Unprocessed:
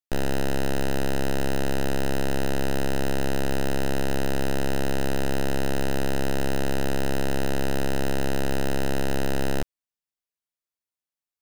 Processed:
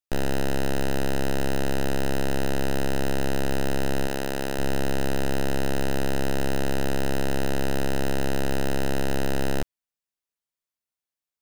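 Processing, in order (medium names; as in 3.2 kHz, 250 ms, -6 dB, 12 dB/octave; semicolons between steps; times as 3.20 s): 4.07–4.59 s: bass shelf 180 Hz -8.5 dB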